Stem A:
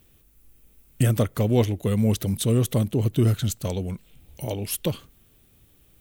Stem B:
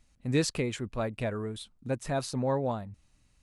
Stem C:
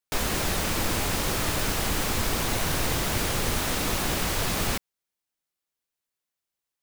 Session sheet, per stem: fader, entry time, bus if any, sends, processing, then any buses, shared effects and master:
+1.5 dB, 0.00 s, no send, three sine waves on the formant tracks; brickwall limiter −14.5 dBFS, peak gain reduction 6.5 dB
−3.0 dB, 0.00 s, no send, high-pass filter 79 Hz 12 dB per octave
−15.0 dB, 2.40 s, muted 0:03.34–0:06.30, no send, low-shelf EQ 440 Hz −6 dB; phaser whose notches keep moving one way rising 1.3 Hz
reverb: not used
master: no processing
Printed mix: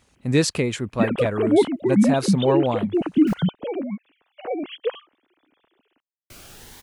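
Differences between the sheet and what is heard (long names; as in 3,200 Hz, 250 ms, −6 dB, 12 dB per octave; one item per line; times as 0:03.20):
stem A: missing brickwall limiter −14.5 dBFS, peak gain reduction 6.5 dB
stem B −3.0 dB → +8.0 dB
stem C: entry 2.40 s → 3.15 s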